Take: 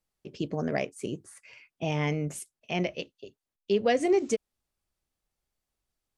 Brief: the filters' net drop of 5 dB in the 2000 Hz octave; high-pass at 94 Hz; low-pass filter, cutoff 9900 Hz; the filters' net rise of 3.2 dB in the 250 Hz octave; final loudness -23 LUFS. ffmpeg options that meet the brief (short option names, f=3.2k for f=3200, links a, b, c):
-af "highpass=94,lowpass=9.9k,equalizer=f=250:t=o:g=5,equalizer=f=2k:t=o:g=-6,volume=5.5dB"